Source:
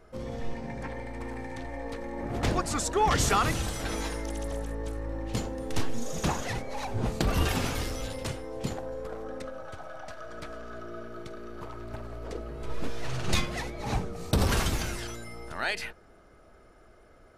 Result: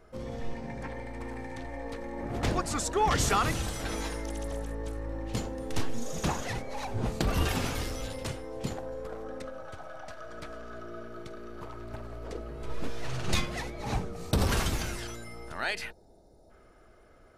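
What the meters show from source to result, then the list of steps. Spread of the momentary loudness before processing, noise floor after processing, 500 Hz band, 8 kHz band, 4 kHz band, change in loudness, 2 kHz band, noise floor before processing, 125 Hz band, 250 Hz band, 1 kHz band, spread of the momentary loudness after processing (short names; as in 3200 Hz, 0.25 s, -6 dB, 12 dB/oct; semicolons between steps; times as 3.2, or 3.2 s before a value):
15 LU, -57 dBFS, -1.5 dB, -1.5 dB, -1.5 dB, -1.5 dB, -1.5 dB, -56 dBFS, -1.5 dB, -1.5 dB, -1.5 dB, 15 LU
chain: spectral gain 15.91–16.5, 970–3500 Hz -19 dB; gain -1.5 dB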